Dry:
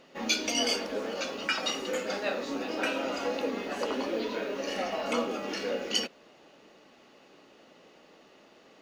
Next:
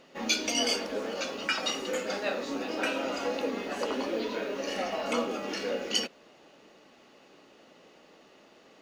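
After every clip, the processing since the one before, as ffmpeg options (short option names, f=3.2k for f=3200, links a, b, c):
-af "equalizer=f=8.3k:w=1.5:g=2"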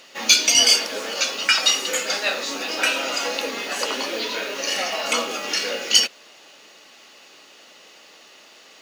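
-filter_complex "[0:a]crystalizer=i=6.5:c=0,asplit=2[a][b];[b]highpass=f=720:p=1,volume=9dB,asoftclip=type=tanh:threshold=0dB[c];[a][c]amix=inputs=2:normalize=0,lowpass=f=4.7k:p=1,volume=-6dB"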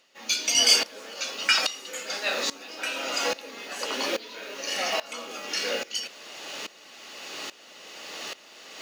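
-af "areverse,acompressor=mode=upward:threshold=-21dB:ratio=2.5,areverse,aeval=exprs='val(0)*pow(10,-19*if(lt(mod(-1.2*n/s,1),2*abs(-1.2)/1000),1-mod(-1.2*n/s,1)/(2*abs(-1.2)/1000),(mod(-1.2*n/s,1)-2*abs(-1.2)/1000)/(1-2*abs(-1.2)/1000))/20)':c=same"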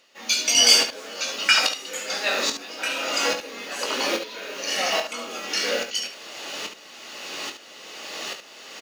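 -af "aecho=1:1:21|71:0.398|0.376,volume=3dB"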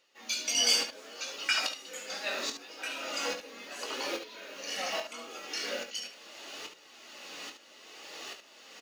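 -af "flanger=delay=2.1:depth=2.1:regen=-53:speed=0.74:shape=triangular,volume=-6.5dB"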